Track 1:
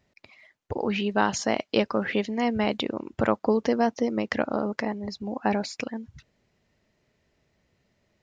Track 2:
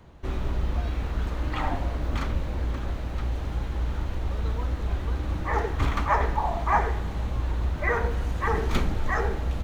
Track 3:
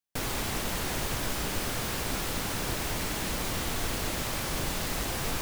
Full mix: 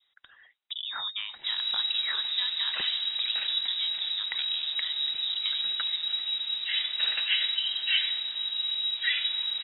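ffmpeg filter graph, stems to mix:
-filter_complex "[0:a]acompressor=threshold=0.0355:ratio=10,aphaser=in_gain=1:out_gain=1:delay=4.7:decay=0.24:speed=1.9:type=triangular,volume=0.75[s0];[1:a]adelay=1200,volume=0.596[s1];[s0][s1]amix=inputs=2:normalize=0,adynamicequalizer=threshold=0.00251:dfrequency=2200:dqfactor=2.9:tfrequency=2200:tqfactor=2.9:attack=5:release=100:ratio=0.375:range=3:mode=boostabove:tftype=bell,lowpass=f=3300:t=q:w=0.5098,lowpass=f=3300:t=q:w=0.6013,lowpass=f=3300:t=q:w=0.9,lowpass=f=3300:t=q:w=2.563,afreqshift=-3900"

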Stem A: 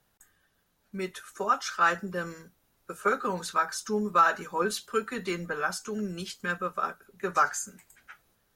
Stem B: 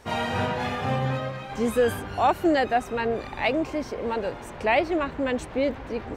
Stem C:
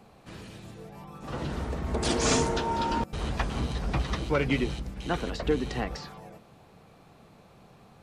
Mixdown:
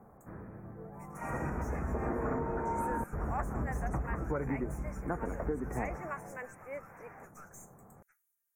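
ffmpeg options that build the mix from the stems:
-filter_complex "[0:a]aderivative,alimiter=level_in=1.68:limit=0.0631:level=0:latency=1:release=208,volume=0.596,aeval=exprs='(tanh(126*val(0)+0.7)-tanh(0.7))/126':c=same,volume=0.473,asplit=2[s0][s1];[1:a]highpass=830,adelay=1100,volume=0.376[s2];[2:a]lowpass=f=1600:w=0.5412,lowpass=f=1600:w=1.3066,volume=0.794[s3];[s1]apad=whole_len=320290[s4];[s2][s4]sidechaincompress=threshold=0.00141:ratio=8:attack=16:release=143[s5];[s0][s5][s3]amix=inputs=3:normalize=0,asuperstop=centerf=3700:order=8:qfactor=0.97,acompressor=threshold=0.0316:ratio=6"

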